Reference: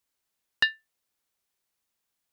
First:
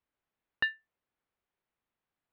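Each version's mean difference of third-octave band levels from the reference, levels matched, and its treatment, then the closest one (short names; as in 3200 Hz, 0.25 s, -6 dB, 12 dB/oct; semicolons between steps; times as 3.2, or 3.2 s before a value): 3.0 dB: limiter -11.5 dBFS, peak gain reduction 3.5 dB; air absorption 500 m; gain +1.5 dB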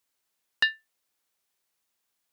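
1.0 dB: low shelf 180 Hz -7 dB; in parallel at -1 dB: limiter -19 dBFS, peak gain reduction 10.5 dB; on the sum: gain -3 dB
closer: second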